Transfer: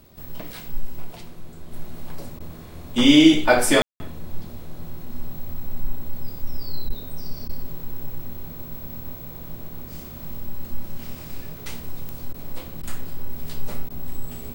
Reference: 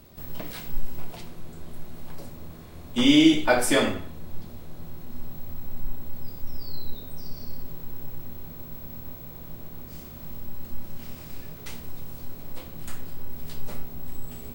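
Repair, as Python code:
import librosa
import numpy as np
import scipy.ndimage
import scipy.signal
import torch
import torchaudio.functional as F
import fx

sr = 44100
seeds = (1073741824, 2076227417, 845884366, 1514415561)

y = fx.fix_declick_ar(x, sr, threshold=10.0)
y = fx.fix_ambience(y, sr, seeds[0], print_start_s=0.0, print_end_s=0.5, start_s=3.82, end_s=4.0)
y = fx.fix_interpolate(y, sr, at_s=(2.39, 6.89, 7.48, 12.33, 12.82, 13.89), length_ms=11.0)
y = fx.gain(y, sr, db=fx.steps((0.0, 0.0), (1.72, -4.0)))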